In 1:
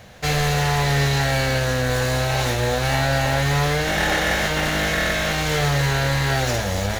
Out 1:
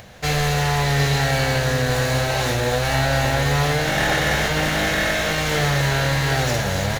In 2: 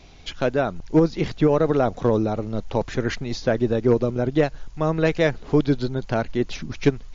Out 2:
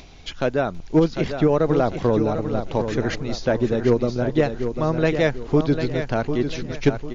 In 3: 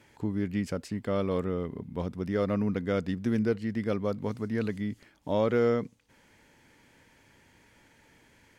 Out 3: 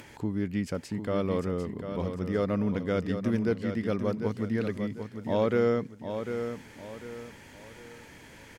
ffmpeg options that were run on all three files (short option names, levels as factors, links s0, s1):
-filter_complex "[0:a]acompressor=mode=upward:threshold=0.01:ratio=2.5,asplit=2[s0][s1];[s1]aecho=0:1:748|1496|2244|2992:0.398|0.139|0.0488|0.0171[s2];[s0][s2]amix=inputs=2:normalize=0"